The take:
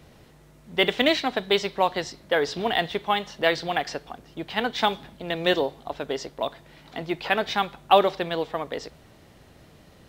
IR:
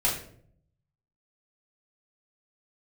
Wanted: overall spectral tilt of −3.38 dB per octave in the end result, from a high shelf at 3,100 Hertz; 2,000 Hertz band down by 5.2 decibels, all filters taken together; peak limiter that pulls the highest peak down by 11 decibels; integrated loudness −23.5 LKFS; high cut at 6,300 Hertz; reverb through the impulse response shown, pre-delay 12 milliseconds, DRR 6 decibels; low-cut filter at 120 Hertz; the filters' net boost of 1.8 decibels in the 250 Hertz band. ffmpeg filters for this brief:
-filter_complex "[0:a]highpass=120,lowpass=6300,equalizer=frequency=250:width_type=o:gain=3,equalizer=frequency=2000:width_type=o:gain=-4.5,highshelf=frequency=3100:gain=-5.5,alimiter=limit=-15.5dB:level=0:latency=1,asplit=2[link_01][link_02];[1:a]atrim=start_sample=2205,adelay=12[link_03];[link_02][link_03]afir=irnorm=-1:irlink=0,volume=-16.5dB[link_04];[link_01][link_04]amix=inputs=2:normalize=0,volume=5dB"

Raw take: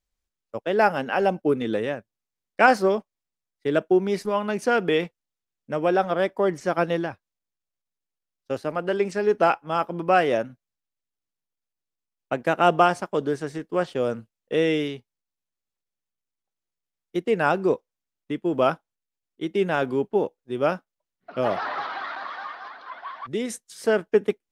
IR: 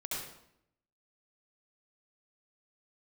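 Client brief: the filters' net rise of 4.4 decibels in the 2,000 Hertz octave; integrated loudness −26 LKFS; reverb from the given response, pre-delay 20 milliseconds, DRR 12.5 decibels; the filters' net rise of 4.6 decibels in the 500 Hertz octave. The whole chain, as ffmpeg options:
-filter_complex "[0:a]equalizer=frequency=500:width_type=o:gain=5.5,equalizer=frequency=2000:width_type=o:gain=6,asplit=2[link_01][link_02];[1:a]atrim=start_sample=2205,adelay=20[link_03];[link_02][link_03]afir=irnorm=-1:irlink=0,volume=-15dB[link_04];[link_01][link_04]amix=inputs=2:normalize=0,volume=-5.5dB"

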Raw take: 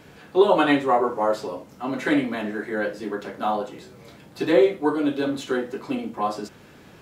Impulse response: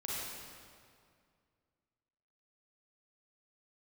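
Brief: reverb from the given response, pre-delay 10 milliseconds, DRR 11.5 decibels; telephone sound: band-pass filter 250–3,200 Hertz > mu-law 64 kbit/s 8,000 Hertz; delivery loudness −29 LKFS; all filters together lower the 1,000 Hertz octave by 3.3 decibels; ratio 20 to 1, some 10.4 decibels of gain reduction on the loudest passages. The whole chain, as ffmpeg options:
-filter_complex "[0:a]equalizer=frequency=1000:width_type=o:gain=-4.5,acompressor=threshold=-22dB:ratio=20,asplit=2[link_01][link_02];[1:a]atrim=start_sample=2205,adelay=10[link_03];[link_02][link_03]afir=irnorm=-1:irlink=0,volume=-14.5dB[link_04];[link_01][link_04]amix=inputs=2:normalize=0,highpass=250,lowpass=3200,volume=1dB" -ar 8000 -c:a pcm_mulaw

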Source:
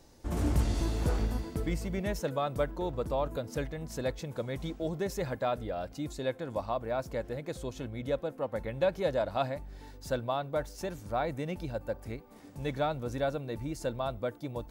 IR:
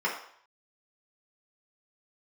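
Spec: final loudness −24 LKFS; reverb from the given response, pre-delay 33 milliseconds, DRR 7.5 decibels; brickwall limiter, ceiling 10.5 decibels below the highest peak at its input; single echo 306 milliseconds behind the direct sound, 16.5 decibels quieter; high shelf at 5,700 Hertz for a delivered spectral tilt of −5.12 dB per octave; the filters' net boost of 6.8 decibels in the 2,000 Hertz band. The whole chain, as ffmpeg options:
-filter_complex "[0:a]equalizer=frequency=2000:width_type=o:gain=8,highshelf=frequency=5700:gain=7,alimiter=level_in=2.5dB:limit=-24dB:level=0:latency=1,volume=-2.5dB,aecho=1:1:306:0.15,asplit=2[link_01][link_02];[1:a]atrim=start_sample=2205,adelay=33[link_03];[link_02][link_03]afir=irnorm=-1:irlink=0,volume=-18dB[link_04];[link_01][link_04]amix=inputs=2:normalize=0,volume=12.5dB"

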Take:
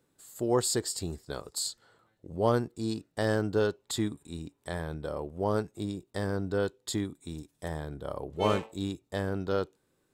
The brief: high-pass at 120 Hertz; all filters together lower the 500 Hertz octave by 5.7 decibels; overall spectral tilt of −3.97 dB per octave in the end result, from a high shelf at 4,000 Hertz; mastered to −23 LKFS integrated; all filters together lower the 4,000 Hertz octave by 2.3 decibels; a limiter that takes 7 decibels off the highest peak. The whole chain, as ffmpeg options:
ffmpeg -i in.wav -af "highpass=120,equalizer=frequency=500:width_type=o:gain=-7,highshelf=frequency=4000:gain=6,equalizer=frequency=4000:width_type=o:gain=-6.5,volume=13.5dB,alimiter=limit=-8dB:level=0:latency=1" out.wav

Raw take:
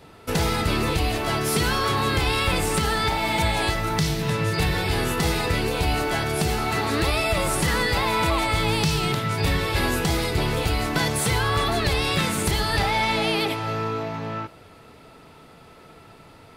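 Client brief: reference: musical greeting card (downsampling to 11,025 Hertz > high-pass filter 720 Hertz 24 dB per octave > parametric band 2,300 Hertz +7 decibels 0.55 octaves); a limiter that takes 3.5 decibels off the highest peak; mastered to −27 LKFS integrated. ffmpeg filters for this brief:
ffmpeg -i in.wav -af "alimiter=limit=-16dB:level=0:latency=1,aresample=11025,aresample=44100,highpass=frequency=720:width=0.5412,highpass=frequency=720:width=1.3066,equalizer=frequency=2300:width_type=o:width=0.55:gain=7,volume=-2dB" out.wav

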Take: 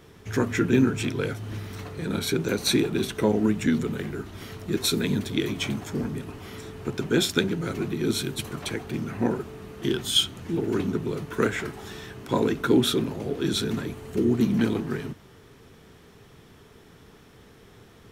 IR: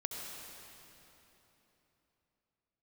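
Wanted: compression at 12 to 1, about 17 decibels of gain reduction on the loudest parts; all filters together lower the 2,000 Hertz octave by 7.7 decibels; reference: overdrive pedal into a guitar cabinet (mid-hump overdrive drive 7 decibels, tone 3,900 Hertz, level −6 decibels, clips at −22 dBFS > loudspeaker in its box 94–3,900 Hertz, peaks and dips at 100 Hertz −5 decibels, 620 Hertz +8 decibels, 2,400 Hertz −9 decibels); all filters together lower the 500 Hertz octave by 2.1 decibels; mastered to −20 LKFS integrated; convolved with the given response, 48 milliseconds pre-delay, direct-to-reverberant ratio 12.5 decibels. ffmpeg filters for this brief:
-filter_complex "[0:a]equalizer=frequency=500:width_type=o:gain=-4,equalizer=frequency=2000:width_type=o:gain=-8,acompressor=threshold=-34dB:ratio=12,asplit=2[link_01][link_02];[1:a]atrim=start_sample=2205,adelay=48[link_03];[link_02][link_03]afir=irnorm=-1:irlink=0,volume=-13.5dB[link_04];[link_01][link_04]amix=inputs=2:normalize=0,asplit=2[link_05][link_06];[link_06]highpass=frequency=720:poles=1,volume=7dB,asoftclip=type=tanh:threshold=-22dB[link_07];[link_05][link_07]amix=inputs=2:normalize=0,lowpass=frequency=3900:poles=1,volume=-6dB,highpass=94,equalizer=frequency=100:width_type=q:width=4:gain=-5,equalizer=frequency=620:width_type=q:width=4:gain=8,equalizer=frequency=2400:width_type=q:width=4:gain=-9,lowpass=frequency=3900:width=0.5412,lowpass=frequency=3900:width=1.3066,volume=21.5dB"

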